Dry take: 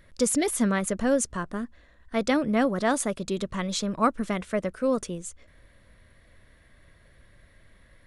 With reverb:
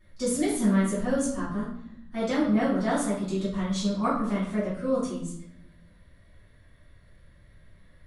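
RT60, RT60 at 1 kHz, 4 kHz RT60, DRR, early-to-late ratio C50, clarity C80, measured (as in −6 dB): 0.75 s, 0.80 s, 0.55 s, −10.5 dB, 3.0 dB, 7.5 dB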